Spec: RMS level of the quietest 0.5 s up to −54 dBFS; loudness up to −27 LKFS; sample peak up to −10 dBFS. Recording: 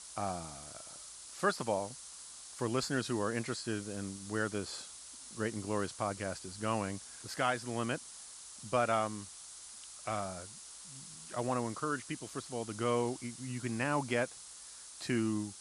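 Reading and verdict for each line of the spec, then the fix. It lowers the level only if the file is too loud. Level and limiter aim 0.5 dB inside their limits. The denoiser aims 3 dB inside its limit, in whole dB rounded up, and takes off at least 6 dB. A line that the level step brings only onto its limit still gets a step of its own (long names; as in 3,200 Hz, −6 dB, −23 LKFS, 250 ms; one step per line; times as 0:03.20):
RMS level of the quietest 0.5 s −51 dBFS: out of spec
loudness −37.0 LKFS: in spec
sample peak −17.0 dBFS: in spec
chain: broadband denoise 6 dB, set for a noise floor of −51 dBFS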